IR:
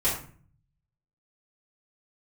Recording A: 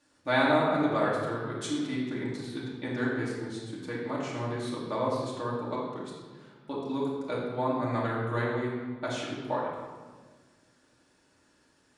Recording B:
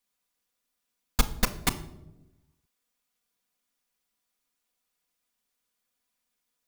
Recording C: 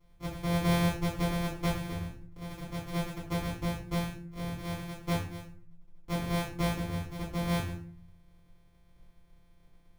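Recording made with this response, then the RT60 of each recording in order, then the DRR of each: C; 1.5 s, non-exponential decay, 0.45 s; −6.5, 0.5, −10.0 decibels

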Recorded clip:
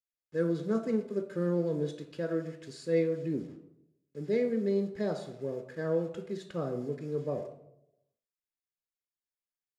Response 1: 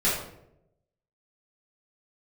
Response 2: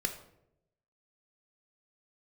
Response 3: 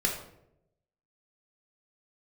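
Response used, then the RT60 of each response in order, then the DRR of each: 2; 0.80, 0.80, 0.80 seconds; −8.5, 5.5, 0.0 decibels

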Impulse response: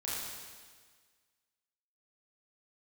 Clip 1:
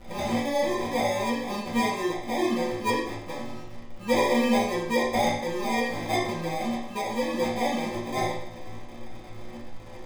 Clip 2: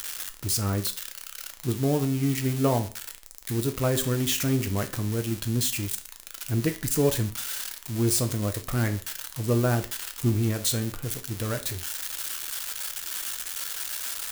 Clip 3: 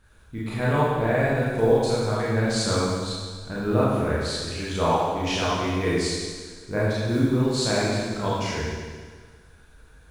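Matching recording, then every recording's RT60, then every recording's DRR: 3; 0.65, 0.40, 1.6 seconds; −8.5, 6.5, −8.0 decibels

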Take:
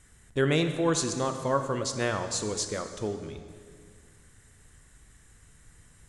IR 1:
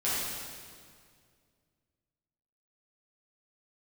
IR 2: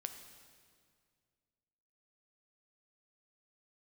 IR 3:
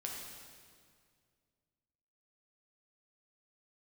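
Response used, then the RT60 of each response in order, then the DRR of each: 2; 2.1, 2.1, 2.1 seconds; −10.5, 6.5, −1.5 decibels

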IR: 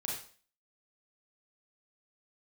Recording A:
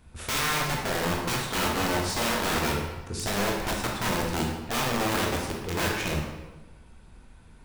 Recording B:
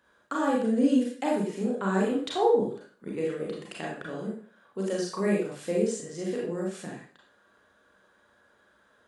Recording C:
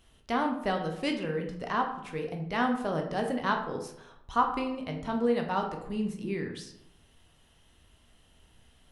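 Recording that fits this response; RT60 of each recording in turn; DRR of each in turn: B; 1.2, 0.45, 0.80 seconds; −1.5, −3.5, 2.5 decibels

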